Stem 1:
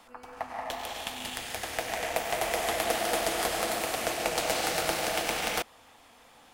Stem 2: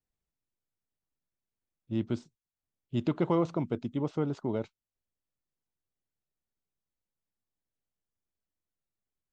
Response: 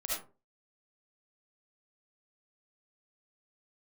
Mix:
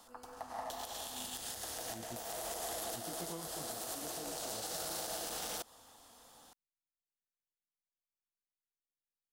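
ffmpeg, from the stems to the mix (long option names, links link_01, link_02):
-filter_complex "[0:a]equalizer=frequency=2300:width_type=o:width=0.79:gain=-14.5,alimiter=limit=-22.5dB:level=0:latency=1:release=21,volume=-5dB[link_01];[1:a]flanger=delay=17:depth=3:speed=0.96,volume=-16.5dB,asplit=2[link_02][link_03];[link_03]apad=whole_len=288011[link_04];[link_01][link_04]sidechaincompress=threshold=-54dB:ratio=6:attack=45:release=415[link_05];[link_05][link_02]amix=inputs=2:normalize=0,highshelf=frequency=2300:gain=8.5,alimiter=level_in=6.5dB:limit=-24dB:level=0:latency=1:release=111,volume=-6.5dB"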